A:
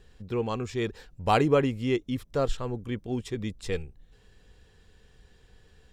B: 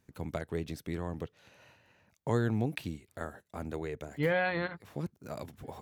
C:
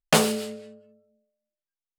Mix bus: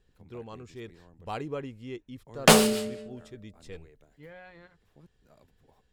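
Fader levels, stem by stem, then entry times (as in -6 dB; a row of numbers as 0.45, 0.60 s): -13.0, -19.5, +2.5 dB; 0.00, 0.00, 2.35 s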